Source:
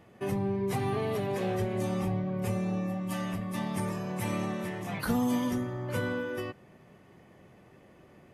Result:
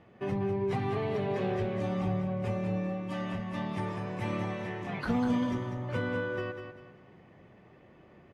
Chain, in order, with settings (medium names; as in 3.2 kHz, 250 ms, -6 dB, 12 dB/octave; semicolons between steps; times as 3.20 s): low-pass 3.7 kHz 12 dB/octave; on a send: feedback delay 196 ms, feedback 34%, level -7.5 dB; on the sum: trim -1 dB